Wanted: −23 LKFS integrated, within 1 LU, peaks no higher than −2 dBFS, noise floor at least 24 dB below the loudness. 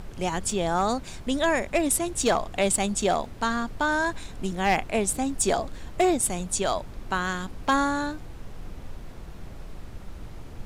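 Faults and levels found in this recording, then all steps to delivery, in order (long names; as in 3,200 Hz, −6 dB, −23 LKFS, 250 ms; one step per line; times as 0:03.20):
share of clipped samples 0.3%; peaks flattened at −15.0 dBFS; background noise floor −41 dBFS; target noise floor −50 dBFS; integrated loudness −26.0 LKFS; sample peak −15.0 dBFS; target loudness −23.0 LKFS
→ clipped peaks rebuilt −15 dBFS
noise reduction from a noise print 9 dB
level +3 dB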